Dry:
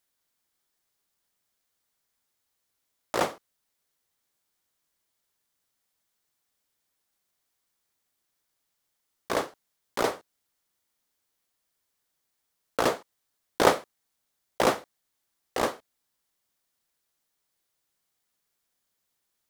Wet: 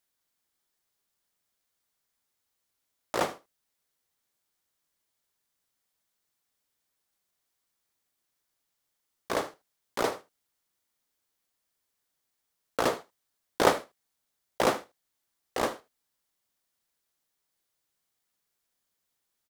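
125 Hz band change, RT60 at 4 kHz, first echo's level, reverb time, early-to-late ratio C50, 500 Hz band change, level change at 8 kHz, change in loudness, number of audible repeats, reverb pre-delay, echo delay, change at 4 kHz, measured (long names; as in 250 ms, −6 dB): −2.0 dB, no reverb audible, −17.0 dB, no reverb audible, no reverb audible, −2.0 dB, −2.0 dB, −2.0 dB, 1, no reverb audible, 77 ms, −2.0 dB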